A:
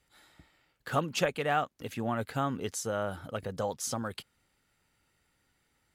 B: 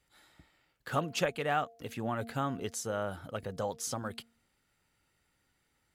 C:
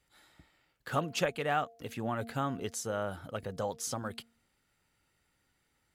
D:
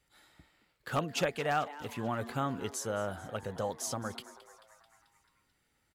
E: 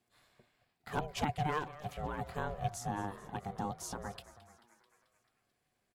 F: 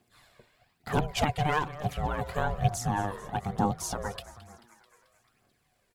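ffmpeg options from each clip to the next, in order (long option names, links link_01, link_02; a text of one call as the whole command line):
ffmpeg -i in.wav -af "bandreject=frequency=230.4:width_type=h:width=4,bandreject=frequency=460.8:width_type=h:width=4,bandreject=frequency=691.2:width_type=h:width=4,volume=-2dB" out.wav
ffmpeg -i in.wav -af anull out.wav
ffmpeg -i in.wav -filter_complex "[0:a]aeval=exprs='0.0944*(abs(mod(val(0)/0.0944+3,4)-2)-1)':channel_layout=same,asplit=7[link_01][link_02][link_03][link_04][link_05][link_06][link_07];[link_02]adelay=219,afreqshift=140,volume=-17dB[link_08];[link_03]adelay=438,afreqshift=280,volume=-21.3dB[link_09];[link_04]adelay=657,afreqshift=420,volume=-25.6dB[link_10];[link_05]adelay=876,afreqshift=560,volume=-29.9dB[link_11];[link_06]adelay=1095,afreqshift=700,volume=-34.2dB[link_12];[link_07]adelay=1314,afreqshift=840,volume=-38.5dB[link_13];[link_01][link_08][link_09][link_10][link_11][link_12][link_13]amix=inputs=7:normalize=0" out.wav
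ffmpeg -i in.wav -af "equalizer=frequency=420:width_type=o:width=0.32:gain=13.5,aeval=exprs='val(0)*sin(2*PI*300*n/s)':channel_layout=same,volume=-3.5dB" out.wav
ffmpeg -i in.wav -af "aphaser=in_gain=1:out_gain=1:delay=2.2:decay=0.45:speed=1.1:type=triangular,volume=7.5dB" out.wav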